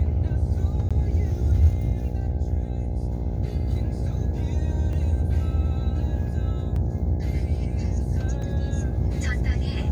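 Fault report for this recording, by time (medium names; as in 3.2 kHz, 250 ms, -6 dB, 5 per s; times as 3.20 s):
buzz 60 Hz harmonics 14 -28 dBFS
0.89–0.91 s: dropout 16 ms
4.93 s: dropout 2.3 ms
6.76 s: dropout 3 ms
8.42 s: dropout 3.6 ms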